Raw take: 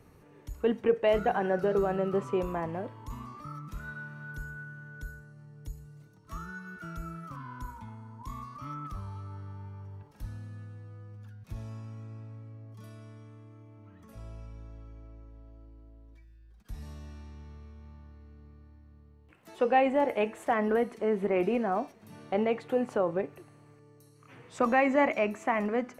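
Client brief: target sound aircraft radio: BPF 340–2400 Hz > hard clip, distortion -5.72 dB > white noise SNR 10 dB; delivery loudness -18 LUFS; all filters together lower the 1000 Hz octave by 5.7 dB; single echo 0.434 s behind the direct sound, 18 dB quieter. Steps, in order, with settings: BPF 340–2400 Hz; bell 1000 Hz -8 dB; echo 0.434 s -18 dB; hard clip -33.5 dBFS; white noise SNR 10 dB; gain +24 dB

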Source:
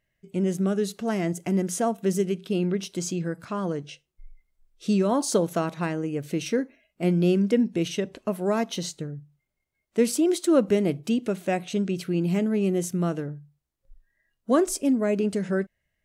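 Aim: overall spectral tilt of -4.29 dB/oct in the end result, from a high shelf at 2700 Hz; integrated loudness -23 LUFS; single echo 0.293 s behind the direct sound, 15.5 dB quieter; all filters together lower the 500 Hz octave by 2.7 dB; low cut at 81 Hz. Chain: HPF 81 Hz; bell 500 Hz -4 dB; high shelf 2700 Hz +8.5 dB; echo 0.293 s -15.5 dB; gain +3 dB

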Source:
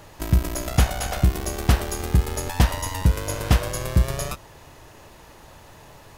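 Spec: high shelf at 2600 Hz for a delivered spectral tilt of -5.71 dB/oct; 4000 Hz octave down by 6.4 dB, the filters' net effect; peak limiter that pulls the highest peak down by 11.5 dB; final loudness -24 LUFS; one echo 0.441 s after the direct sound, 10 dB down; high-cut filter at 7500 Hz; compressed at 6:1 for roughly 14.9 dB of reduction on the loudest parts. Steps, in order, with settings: LPF 7500 Hz; high shelf 2600 Hz -6 dB; bell 4000 Hz -3 dB; compressor 6:1, threshold -29 dBFS; limiter -27.5 dBFS; echo 0.441 s -10 dB; gain +14.5 dB

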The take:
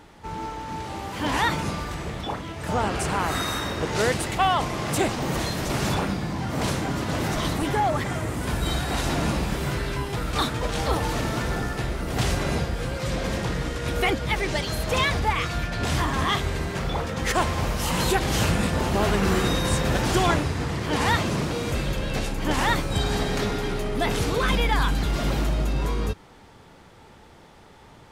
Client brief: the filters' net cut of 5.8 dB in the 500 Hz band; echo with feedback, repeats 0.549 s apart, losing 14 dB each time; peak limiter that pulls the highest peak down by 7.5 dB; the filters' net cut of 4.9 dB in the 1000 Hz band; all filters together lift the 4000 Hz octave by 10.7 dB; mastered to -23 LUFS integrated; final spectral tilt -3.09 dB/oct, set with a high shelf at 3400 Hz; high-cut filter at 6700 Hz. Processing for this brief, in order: LPF 6700 Hz; bell 500 Hz -6.5 dB; bell 1000 Hz -5.5 dB; high shelf 3400 Hz +7.5 dB; bell 4000 Hz +9 dB; limiter -13.5 dBFS; feedback echo 0.549 s, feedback 20%, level -14 dB; gain +0.5 dB

